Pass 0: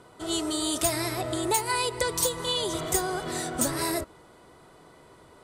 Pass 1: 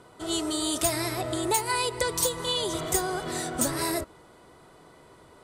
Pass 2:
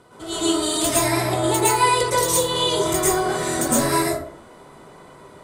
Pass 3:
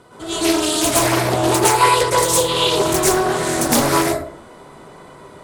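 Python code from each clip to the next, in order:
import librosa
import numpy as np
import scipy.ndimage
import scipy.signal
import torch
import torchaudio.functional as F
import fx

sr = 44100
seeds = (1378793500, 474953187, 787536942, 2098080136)

y1 = x
y2 = fx.rev_plate(y1, sr, seeds[0], rt60_s=0.51, hf_ratio=0.55, predelay_ms=100, drr_db=-8.0)
y3 = fx.doppler_dist(y2, sr, depth_ms=0.58)
y3 = y3 * librosa.db_to_amplitude(4.0)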